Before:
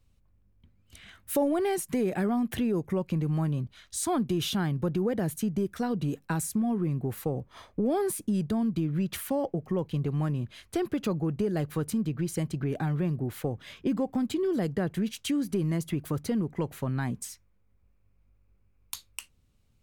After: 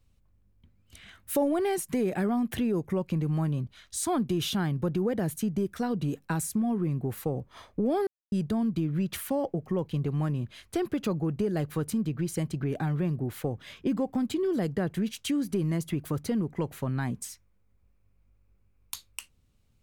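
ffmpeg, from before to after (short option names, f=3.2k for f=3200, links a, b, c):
-filter_complex "[0:a]asplit=3[a][b][c];[a]atrim=end=8.07,asetpts=PTS-STARTPTS,afade=t=out:st=8.066:d=0.004:c=hsin[d];[b]atrim=start=8.07:end=8.32,asetpts=PTS-STARTPTS,volume=0[e];[c]atrim=start=8.32,asetpts=PTS-STARTPTS,afade=t=in:d=0.004:c=hsin[f];[d][e][f]concat=n=3:v=0:a=1"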